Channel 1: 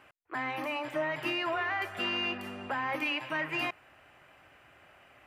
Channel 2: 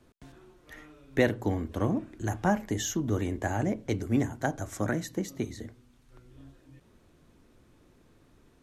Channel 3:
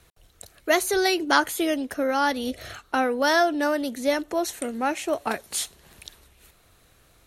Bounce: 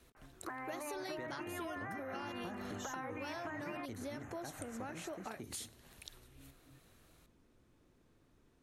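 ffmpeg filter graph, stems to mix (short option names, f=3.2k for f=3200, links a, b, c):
-filter_complex "[0:a]dynaudnorm=f=160:g=3:m=11.5dB,lowpass=f=1.9k:w=0.5412,lowpass=f=1.9k:w=1.3066,acompressor=threshold=-32dB:ratio=6,adelay=150,volume=-4.5dB[a];[1:a]volume=-9dB[b];[2:a]volume=-8.5dB[c];[b][c]amix=inputs=2:normalize=0,acompressor=threshold=-37dB:ratio=4,volume=0dB[d];[a][d]amix=inputs=2:normalize=0,acompressor=threshold=-43dB:ratio=2.5"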